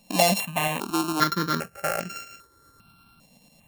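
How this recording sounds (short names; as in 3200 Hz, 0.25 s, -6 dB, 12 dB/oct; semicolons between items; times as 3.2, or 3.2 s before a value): a buzz of ramps at a fixed pitch in blocks of 32 samples; tremolo saw up 8.9 Hz, depth 40%; notches that jump at a steady rate 2.5 Hz 370–3700 Hz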